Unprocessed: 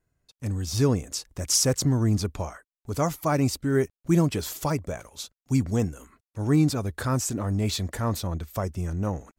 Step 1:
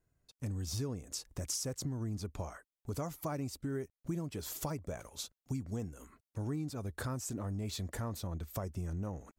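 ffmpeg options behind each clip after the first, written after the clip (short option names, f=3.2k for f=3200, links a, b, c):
-af "equalizer=f=2.6k:w=0.46:g=-3,acompressor=threshold=-33dB:ratio=6,volume=-2.5dB"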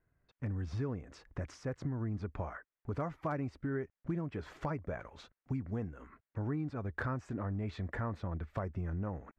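-af "lowpass=f=1.8k:t=q:w=1.8,volume=27.5dB,asoftclip=hard,volume=-27.5dB,volume=1dB"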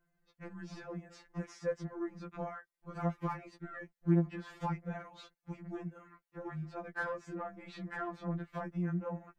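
-af "aeval=exprs='0.0501*(cos(1*acos(clip(val(0)/0.0501,-1,1)))-cos(1*PI/2))+0.00224*(cos(3*acos(clip(val(0)/0.0501,-1,1)))-cos(3*PI/2))+0.000355*(cos(6*acos(clip(val(0)/0.0501,-1,1)))-cos(6*PI/2))':c=same,afftfilt=real='re*2.83*eq(mod(b,8),0)':imag='im*2.83*eq(mod(b,8),0)':win_size=2048:overlap=0.75,volume=4dB"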